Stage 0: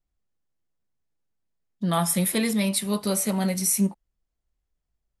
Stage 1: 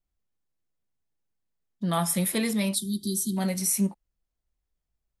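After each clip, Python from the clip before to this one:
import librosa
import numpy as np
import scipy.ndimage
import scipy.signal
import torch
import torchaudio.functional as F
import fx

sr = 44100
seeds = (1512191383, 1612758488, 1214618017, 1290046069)

y = fx.spec_erase(x, sr, start_s=2.75, length_s=0.62, low_hz=390.0, high_hz=3100.0)
y = y * 10.0 ** (-2.5 / 20.0)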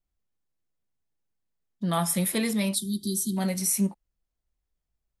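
y = x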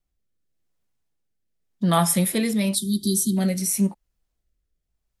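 y = fx.rotary(x, sr, hz=0.9)
y = y * 10.0 ** (7.0 / 20.0)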